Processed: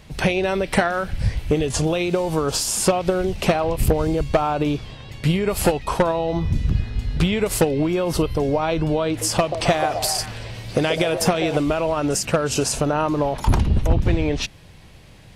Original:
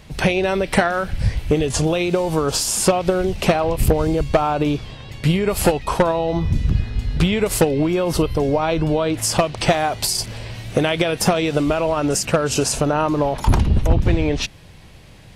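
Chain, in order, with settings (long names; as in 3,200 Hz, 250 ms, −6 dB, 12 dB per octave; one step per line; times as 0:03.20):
0:09.08–0:11.57: echo through a band-pass that steps 132 ms, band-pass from 490 Hz, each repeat 0.7 octaves, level −4.5 dB
level −2 dB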